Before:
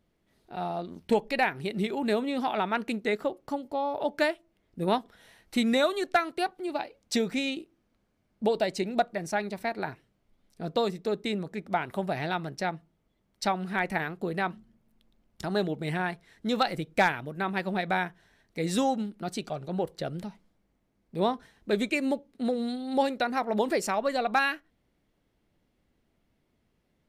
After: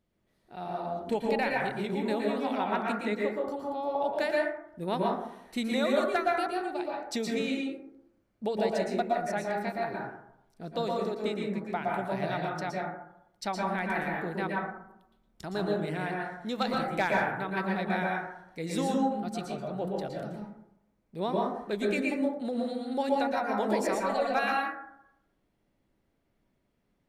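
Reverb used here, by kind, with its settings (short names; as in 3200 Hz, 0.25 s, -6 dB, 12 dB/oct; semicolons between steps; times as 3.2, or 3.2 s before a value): plate-style reverb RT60 0.8 s, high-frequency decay 0.3×, pre-delay 0.105 s, DRR -2.5 dB; gain -6 dB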